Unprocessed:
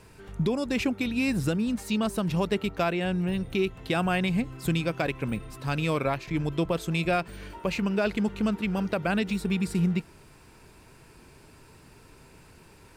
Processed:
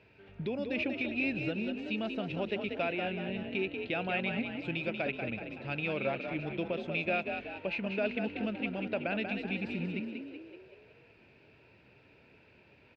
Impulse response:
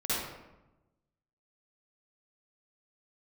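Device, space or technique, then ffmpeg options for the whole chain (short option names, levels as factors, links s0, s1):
frequency-shifting delay pedal into a guitar cabinet: -filter_complex "[0:a]asplit=7[s0][s1][s2][s3][s4][s5][s6];[s1]adelay=188,afreqshift=49,volume=0.473[s7];[s2]adelay=376,afreqshift=98,volume=0.245[s8];[s3]adelay=564,afreqshift=147,volume=0.127[s9];[s4]adelay=752,afreqshift=196,volume=0.0668[s10];[s5]adelay=940,afreqshift=245,volume=0.0347[s11];[s6]adelay=1128,afreqshift=294,volume=0.018[s12];[s0][s7][s8][s9][s10][s11][s12]amix=inputs=7:normalize=0,highpass=94,equalizer=f=170:t=q:w=4:g=-5,equalizer=f=600:t=q:w=4:g=5,equalizer=f=1100:t=q:w=4:g=-10,equalizer=f=2500:t=q:w=4:g=9,lowpass=f=3800:w=0.5412,lowpass=f=3800:w=1.3066,volume=0.376"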